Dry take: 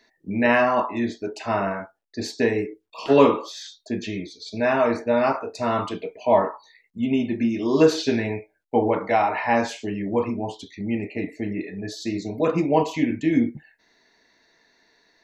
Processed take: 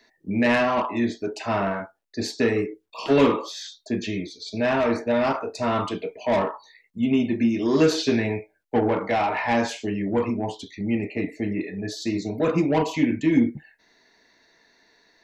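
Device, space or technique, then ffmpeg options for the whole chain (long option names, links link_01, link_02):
one-band saturation: -filter_complex "[0:a]acrossover=split=330|2400[link_01][link_02][link_03];[link_02]asoftclip=type=tanh:threshold=-21dB[link_04];[link_01][link_04][link_03]amix=inputs=3:normalize=0,volume=1.5dB"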